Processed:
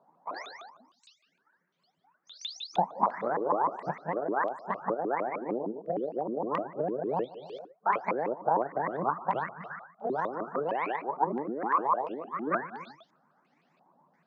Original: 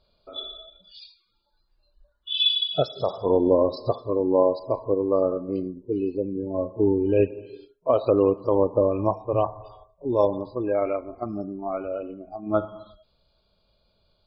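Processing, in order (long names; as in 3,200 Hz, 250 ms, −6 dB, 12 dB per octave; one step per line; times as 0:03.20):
pitch shifter swept by a sawtooth +11.5 semitones, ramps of 153 ms
low-shelf EQ 390 Hz +7 dB
downward compressor 5 to 1, threshold −30 dBFS, peak gain reduction 16.5 dB
Butterworth high-pass 160 Hz 48 dB per octave
low-pass on a step sequencer 2.9 Hz 960–3,300 Hz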